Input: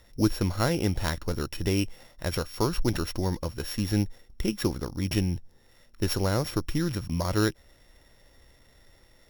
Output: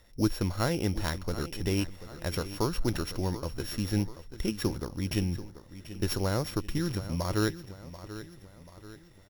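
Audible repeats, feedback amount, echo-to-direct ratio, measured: 4, 47%, -13.0 dB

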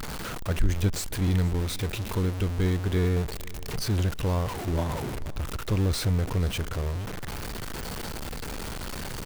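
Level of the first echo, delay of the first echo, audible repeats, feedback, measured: -21.0 dB, 470 ms, 2, 44%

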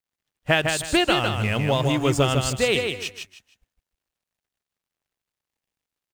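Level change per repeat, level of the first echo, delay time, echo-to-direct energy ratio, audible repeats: -11.5 dB, -5.0 dB, 155 ms, -4.5 dB, 3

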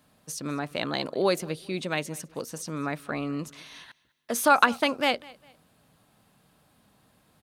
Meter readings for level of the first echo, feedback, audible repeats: -23.0 dB, 34%, 2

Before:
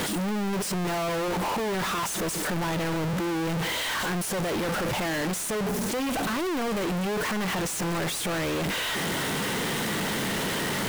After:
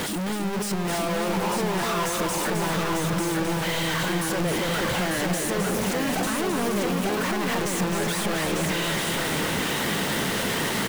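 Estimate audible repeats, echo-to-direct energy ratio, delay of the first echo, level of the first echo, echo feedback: 3, -0.5 dB, 263 ms, -5.5 dB, no regular repeats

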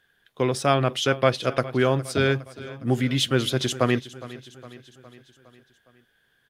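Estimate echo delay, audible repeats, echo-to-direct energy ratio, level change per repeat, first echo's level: 411 ms, 4, -16.0 dB, -5.0 dB, -17.5 dB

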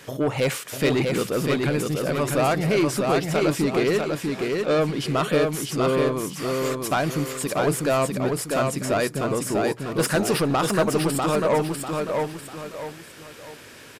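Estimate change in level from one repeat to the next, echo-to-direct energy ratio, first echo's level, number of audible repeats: -9.0 dB, -3.0 dB, -3.5 dB, 3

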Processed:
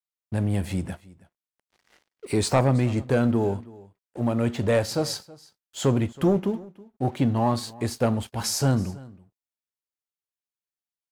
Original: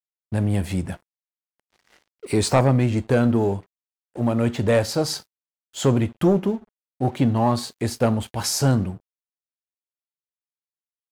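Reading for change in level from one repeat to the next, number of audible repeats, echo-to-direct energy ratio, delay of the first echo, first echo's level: no regular repeats, 1, -21.5 dB, 323 ms, -21.5 dB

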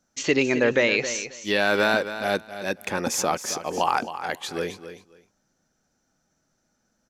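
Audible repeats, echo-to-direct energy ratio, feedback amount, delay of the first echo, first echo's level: 2, -11.5 dB, 18%, 268 ms, -11.5 dB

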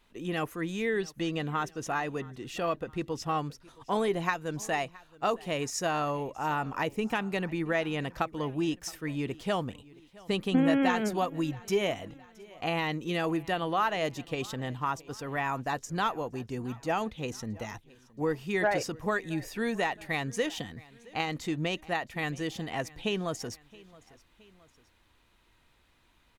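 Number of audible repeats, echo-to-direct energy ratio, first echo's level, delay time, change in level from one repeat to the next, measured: 2, -21.5 dB, -22.5 dB, 670 ms, -5.5 dB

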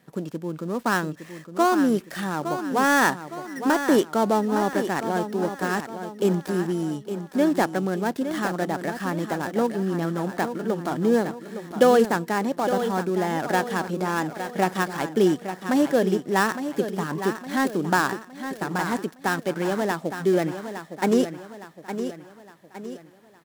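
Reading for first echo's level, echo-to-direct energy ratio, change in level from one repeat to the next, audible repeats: -9.5 dB, -8.5 dB, -7.0 dB, 4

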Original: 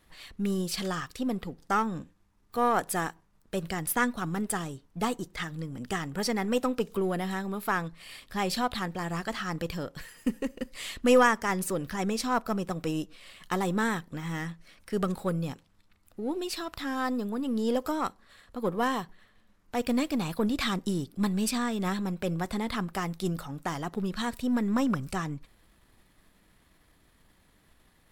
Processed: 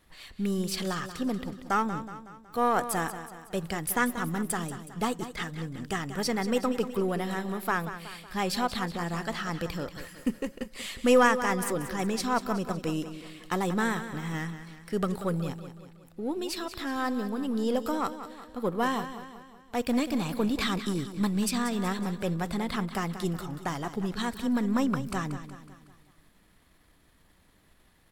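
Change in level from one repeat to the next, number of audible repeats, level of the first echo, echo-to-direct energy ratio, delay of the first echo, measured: -6.0 dB, 4, -11.5 dB, -10.5 dB, 185 ms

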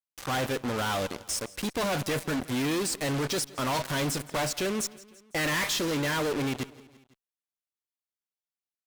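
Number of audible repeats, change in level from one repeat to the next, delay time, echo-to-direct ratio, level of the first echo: 3, -4.5 dB, 168 ms, -19.0 dB, -20.5 dB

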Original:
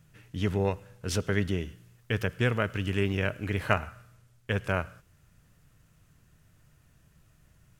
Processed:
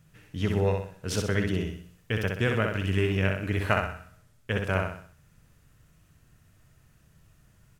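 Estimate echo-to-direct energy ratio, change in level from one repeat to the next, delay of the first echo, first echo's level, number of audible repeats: -3.0 dB, -7.5 dB, 63 ms, -4.0 dB, 5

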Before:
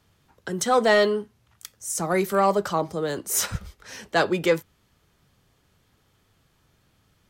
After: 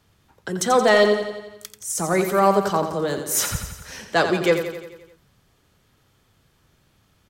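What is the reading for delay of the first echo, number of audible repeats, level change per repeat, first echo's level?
87 ms, 6, -4.5 dB, -8.5 dB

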